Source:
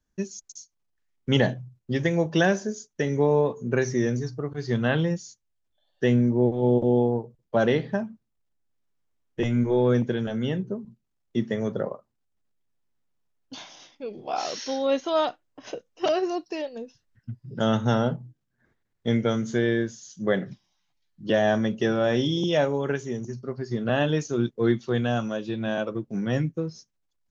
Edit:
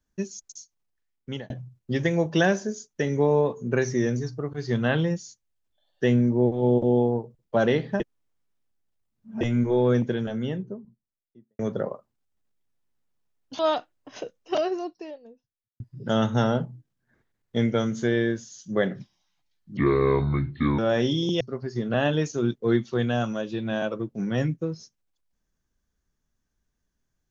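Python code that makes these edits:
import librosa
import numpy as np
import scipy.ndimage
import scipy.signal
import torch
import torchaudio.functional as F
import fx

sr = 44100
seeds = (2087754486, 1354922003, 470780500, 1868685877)

y = fx.studio_fade_out(x, sr, start_s=10.01, length_s=1.58)
y = fx.studio_fade_out(y, sr, start_s=15.76, length_s=1.55)
y = fx.edit(y, sr, fx.fade_out_span(start_s=0.51, length_s=0.99, curve='qsin'),
    fx.reverse_span(start_s=8.0, length_s=1.41),
    fx.cut(start_s=13.59, length_s=1.51),
    fx.speed_span(start_s=21.28, length_s=0.65, speed=0.64),
    fx.cut(start_s=22.55, length_s=0.81), tone=tone)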